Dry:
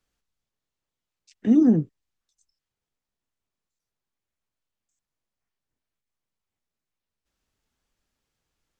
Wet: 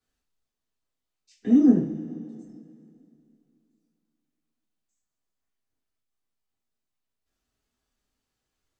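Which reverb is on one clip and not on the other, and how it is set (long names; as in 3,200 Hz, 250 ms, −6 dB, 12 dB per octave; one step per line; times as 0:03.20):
coupled-rooms reverb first 0.34 s, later 2.7 s, from −18 dB, DRR −7 dB
level −9.5 dB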